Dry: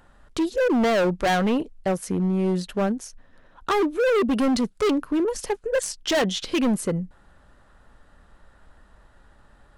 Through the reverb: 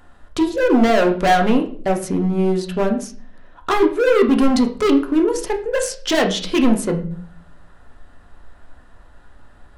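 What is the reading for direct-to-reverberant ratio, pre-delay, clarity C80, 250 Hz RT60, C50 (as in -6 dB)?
3.0 dB, 3 ms, 15.5 dB, 0.70 s, 11.0 dB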